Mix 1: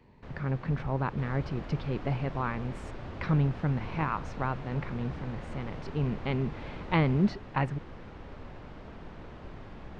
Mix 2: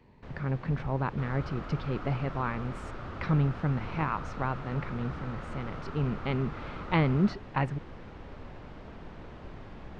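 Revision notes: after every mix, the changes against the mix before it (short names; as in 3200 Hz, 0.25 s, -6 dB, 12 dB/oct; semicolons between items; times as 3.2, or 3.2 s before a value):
second sound: add bell 1300 Hz +12.5 dB 0.45 oct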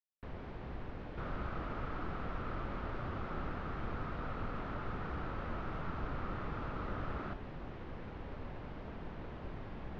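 speech: muted; master: add air absorption 110 m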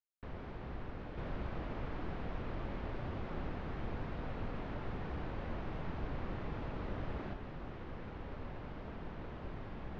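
second sound: add bell 1300 Hz -12.5 dB 0.45 oct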